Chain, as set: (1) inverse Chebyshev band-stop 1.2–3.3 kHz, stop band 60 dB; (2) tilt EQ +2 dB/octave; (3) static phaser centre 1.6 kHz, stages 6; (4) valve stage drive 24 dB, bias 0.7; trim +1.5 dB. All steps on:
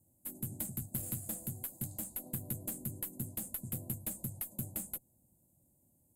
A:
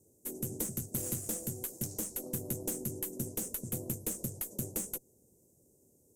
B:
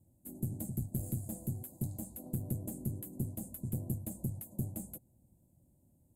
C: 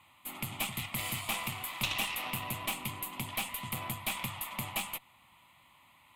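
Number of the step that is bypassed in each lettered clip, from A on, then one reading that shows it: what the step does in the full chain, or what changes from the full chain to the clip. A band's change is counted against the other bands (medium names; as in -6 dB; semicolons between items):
3, 500 Hz band +7.5 dB; 2, 8 kHz band -10.5 dB; 1, 4 kHz band +19.5 dB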